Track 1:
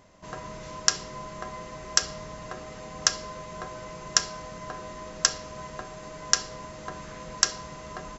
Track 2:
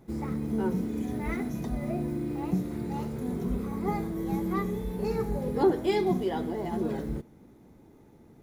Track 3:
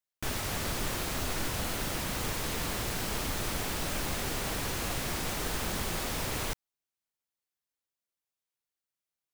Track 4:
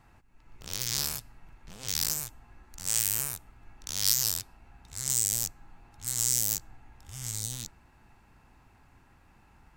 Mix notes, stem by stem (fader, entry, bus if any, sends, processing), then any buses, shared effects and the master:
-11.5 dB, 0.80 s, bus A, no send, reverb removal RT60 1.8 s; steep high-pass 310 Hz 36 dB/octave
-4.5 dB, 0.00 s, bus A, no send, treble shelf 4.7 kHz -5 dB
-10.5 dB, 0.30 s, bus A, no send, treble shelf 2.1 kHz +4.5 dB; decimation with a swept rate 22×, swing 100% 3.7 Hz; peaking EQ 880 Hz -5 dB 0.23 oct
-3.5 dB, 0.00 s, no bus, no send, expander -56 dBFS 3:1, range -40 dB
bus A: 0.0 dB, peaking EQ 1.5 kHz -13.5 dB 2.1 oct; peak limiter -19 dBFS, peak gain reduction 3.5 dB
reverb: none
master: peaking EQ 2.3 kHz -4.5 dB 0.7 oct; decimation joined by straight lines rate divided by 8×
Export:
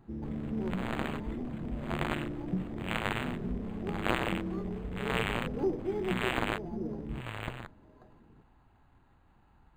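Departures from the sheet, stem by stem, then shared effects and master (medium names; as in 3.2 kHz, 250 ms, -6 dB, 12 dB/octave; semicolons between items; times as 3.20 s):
stem 1: entry 0.80 s -> 0.05 s; stem 3: entry 0.30 s -> 0.00 s; stem 4: missing expander -56 dBFS 3:1, range -40 dB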